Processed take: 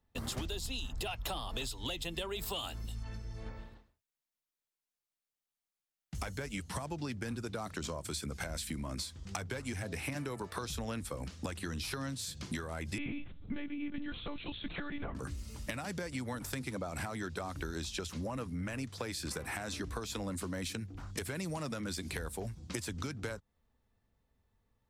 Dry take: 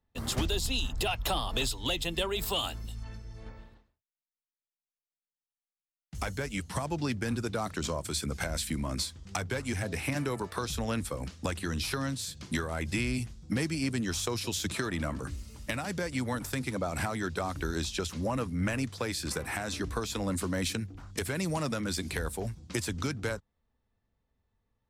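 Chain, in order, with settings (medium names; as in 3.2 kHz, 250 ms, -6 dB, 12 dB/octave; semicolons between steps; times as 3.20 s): compression 4:1, threshold -39 dBFS, peak gain reduction 11.5 dB; 12.98–15.15 s: monotone LPC vocoder at 8 kHz 290 Hz; trim +2 dB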